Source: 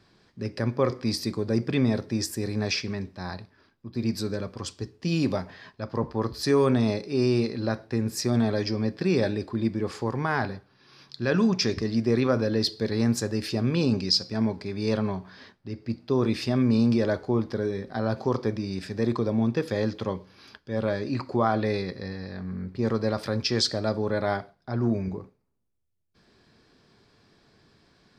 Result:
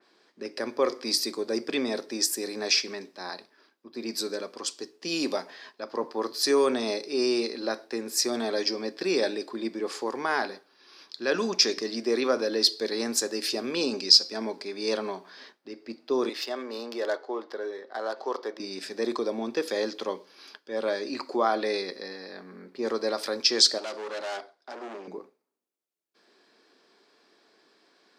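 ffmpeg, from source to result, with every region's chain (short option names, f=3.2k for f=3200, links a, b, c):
-filter_complex "[0:a]asettb=1/sr,asplit=3[a][b][c];[a]atrim=end=16.294[d];[b]atrim=start=16.29:end=18.6,asetpts=PTS-STARTPTS,afade=t=in:d=0.004:c=qsin,afade=t=out:st=2.306:d=0.004:c=qsin,highpass=490,adynamicsmooth=sensitivity=3.5:basefreq=3.2k,bandreject=f=2.4k:w=8.4[e];[c]atrim=start=18.596[f];[d][e]acrossfade=d=0.004:c1=hsin:c2=qsin[g];[g][f]acrossfade=d=0.004:c1=qsin:c2=hsin,asettb=1/sr,asplit=3[h][i][j];[h]atrim=end=23.784[k];[i]atrim=start=23.78:end=25.08,asetpts=PTS-STARTPTS,afade=t=in:d=0.004:c=qsin,afade=t=out:st=1.296:d=0.004:c=qsin,asoftclip=type=hard:threshold=-31dB,highpass=290,lowpass=7.6k[l];[j]atrim=start=25.076[m];[k][l]acrossfade=d=0.004:c1=hsin:c2=qsin[n];[n][m]acrossfade=d=0.004:c1=qsin:c2=hsin,highpass=f=300:w=0.5412,highpass=f=300:w=1.3066,adynamicequalizer=threshold=0.00447:dfrequency=3400:dqfactor=0.7:tfrequency=3400:tqfactor=0.7:attack=5:release=100:ratio=0.375:range=4:mode=boostabove:tftype=highshelf"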